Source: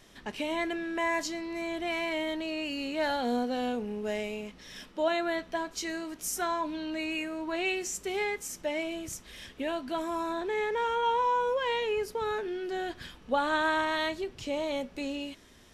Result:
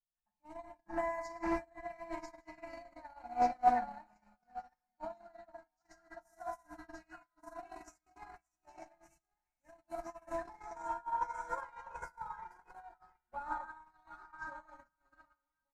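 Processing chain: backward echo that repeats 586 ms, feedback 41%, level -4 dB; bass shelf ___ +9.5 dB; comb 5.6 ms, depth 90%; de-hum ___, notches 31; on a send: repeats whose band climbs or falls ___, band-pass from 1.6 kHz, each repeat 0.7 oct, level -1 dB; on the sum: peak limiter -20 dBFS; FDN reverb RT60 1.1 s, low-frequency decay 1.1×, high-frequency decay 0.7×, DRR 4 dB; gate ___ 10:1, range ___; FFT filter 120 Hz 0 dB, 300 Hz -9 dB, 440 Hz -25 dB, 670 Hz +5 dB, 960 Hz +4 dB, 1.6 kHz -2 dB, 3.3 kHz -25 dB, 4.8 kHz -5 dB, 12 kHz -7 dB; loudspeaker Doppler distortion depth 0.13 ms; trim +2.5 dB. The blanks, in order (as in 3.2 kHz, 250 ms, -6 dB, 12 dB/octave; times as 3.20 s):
110 Hz, 292 Hz, 727 ms, -21 dBFS, -56 dB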